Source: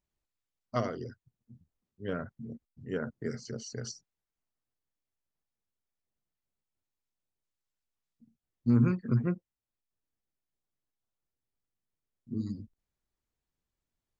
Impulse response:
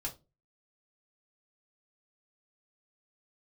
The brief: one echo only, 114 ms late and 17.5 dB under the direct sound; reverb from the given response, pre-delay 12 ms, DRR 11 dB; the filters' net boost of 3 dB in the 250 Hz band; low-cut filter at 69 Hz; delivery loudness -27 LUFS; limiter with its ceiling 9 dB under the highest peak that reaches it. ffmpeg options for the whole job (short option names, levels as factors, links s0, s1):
-filter_complex "[0:a]highpass=69,equalizer=f=250:t=o:g=3.5,alimiter=limit=0.0944:level=0:latency=1,aecho=1:1:114:0.133,asplit=2[s0][s1];[1:a]atrim=start_sample=2205,adelay=12[s2];[s1][s2]afir=irnorm=-1:irlink=0,volume=0.266[s3];[s0][s3]amix=inputs=2:normalize=0,volume=2.37"